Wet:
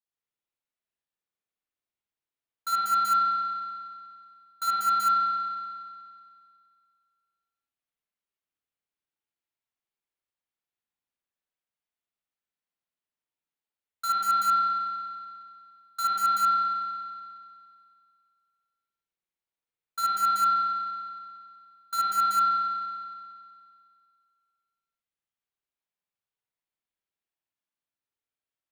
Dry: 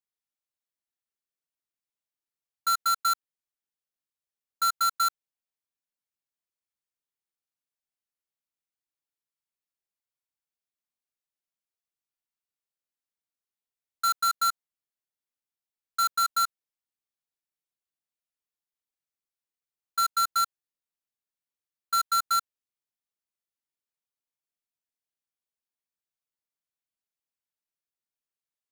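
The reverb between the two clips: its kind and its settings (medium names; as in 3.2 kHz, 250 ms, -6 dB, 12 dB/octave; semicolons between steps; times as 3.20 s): spring tank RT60 2.2 s, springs 55 ms, chirp 40 ms, DRR -8 dB; trim -6.5 dB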